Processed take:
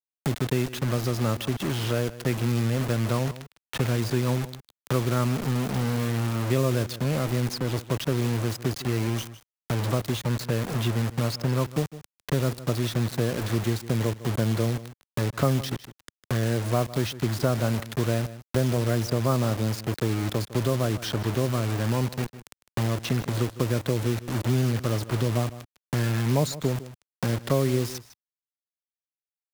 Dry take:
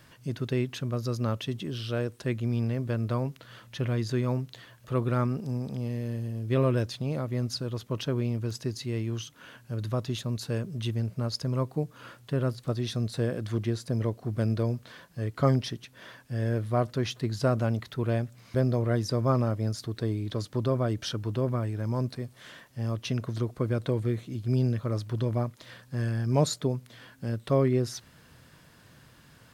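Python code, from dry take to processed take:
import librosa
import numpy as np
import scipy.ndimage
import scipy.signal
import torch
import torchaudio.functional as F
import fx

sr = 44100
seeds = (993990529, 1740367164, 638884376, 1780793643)

p1 = fx.quant_dither(x, sr, seeds[0], bits=6, dither='none')
p2 = p1 + fx.echo_single(p1, sr, ms=154, db=-18.0, dry=0)
p3 = fx.band_squash(p2, sr, depth_pct=70)
y = p3 * 10.0 ** (2.5 / 20.0)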